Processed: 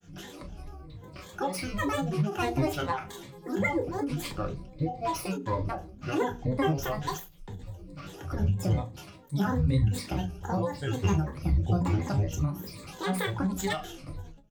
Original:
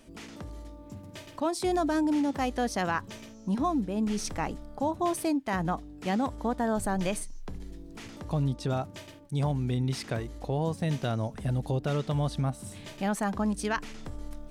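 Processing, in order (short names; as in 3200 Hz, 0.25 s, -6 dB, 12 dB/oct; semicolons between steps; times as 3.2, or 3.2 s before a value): tracing distortion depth 0.051 ms; ripple EQ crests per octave 0.99, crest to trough 13 dB; grains, spray 10 ms, pitch spread up and down by 12 st; bell 200 Hz +4 dB 0.33 oct; notches 60/120/180/240/300/360/420/480 Hz; notch comb 220 Hz; feedback echo 70 ms, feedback 18%, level -20.5 dB; on a send at -5 dB: reverb, pre-delay 3 ms; on the sum: ending taper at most 120 dB/s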